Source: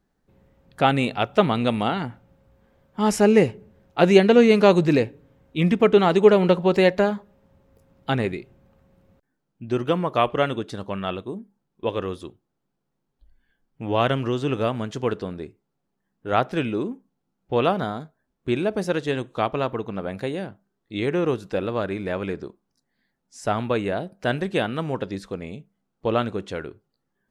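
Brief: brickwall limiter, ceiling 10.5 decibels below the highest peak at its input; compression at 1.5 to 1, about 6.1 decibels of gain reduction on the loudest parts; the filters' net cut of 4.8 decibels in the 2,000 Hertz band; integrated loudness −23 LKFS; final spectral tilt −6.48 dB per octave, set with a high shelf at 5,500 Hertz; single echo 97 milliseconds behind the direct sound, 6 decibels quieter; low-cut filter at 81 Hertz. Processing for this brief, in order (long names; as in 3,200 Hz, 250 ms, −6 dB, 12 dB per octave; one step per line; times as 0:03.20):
high-pass filter 81 Hz
parametric band 2,000 Hz −5.5 dB
high-shelf EQ 5,500 Hz −8 dB
downward compressor 1.5 to 1, threshold −27 dBFS
brickwall limiter −19.5 dBFS
single-tap delay 97 ms −6 dB
level +7.5 dB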